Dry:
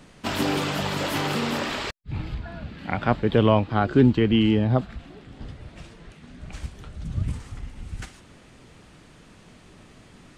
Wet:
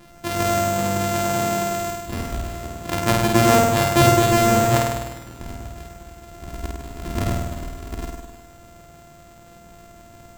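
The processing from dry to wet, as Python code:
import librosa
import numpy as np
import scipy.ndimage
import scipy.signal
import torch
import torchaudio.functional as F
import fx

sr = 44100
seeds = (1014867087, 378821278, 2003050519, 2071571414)

y = np.r_[np.sort(x[:len(x) // 128 * 128].reshape(-1, 128), axis=1).ravel(), x[len(x) // 128 * 128:]]
y = fx.room_flutter(y, sr, wall_m=8.7, rt60_s=1.2)
y = y * librosa.db_to_amplitude(1.0)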